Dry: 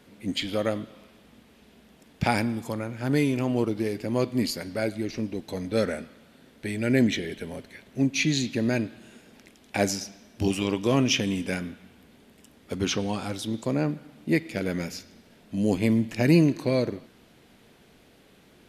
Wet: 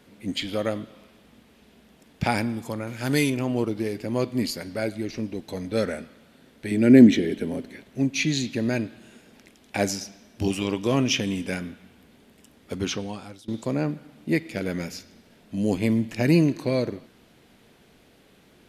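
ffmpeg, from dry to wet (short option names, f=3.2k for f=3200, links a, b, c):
-filter_complex "[0:a]asettb=1/sr,asplit=3[a][b][c];[a]atrim=end=2.874[d];[b]atrim=start=2.87:end=3.3,asetpts=PTS-STARTPTS,afade=t=in:d=0.004:c=qsin,afade=t=out:st=0.426:d=0.004:c=qsin,highshelf=f=2.1k:g=11[e];[c]atrim=start=3.296[f];[d][e]acrossfade=d=0.004:c1=hsin:c2=qsin[g];[g][f]acrossfade=d=0.004:c1=qsin:c2=hsin,asettb=1/sr,asplit=3[h][i][j];[h]atrim=end=6.714[k];[i]atrim=start=6.71:end=7.83,asetpts=PTS-STARTPTS,afade=t=in:d=0.004:c=qsin,afade=t=out:st=1.116:d=0.004:c=qsin,equalizer=f=280:t=o:w=1.5:g=11.5[l];[j]atrim=start=7.826[m];[k][l]acrossfade=d=0.004:c1=hsin:c2=qsin[n];[n][m]acrossfade=d=0.004:c1=qsin:c2=hsin,asplit=2[o][p];[o]atrim=end=13.48,asetpts=PTS-STARTPTS,afade=t=out:st=12.76:d=0.72:silence=0.0944061[q];[p]atrim=start=13.48,asetpts=PTS-STARTPTS,afade=t=in:d=0.004:c=hsin:silence=0.0944061[r];[q][r]concat=n=2:v=0:a=1"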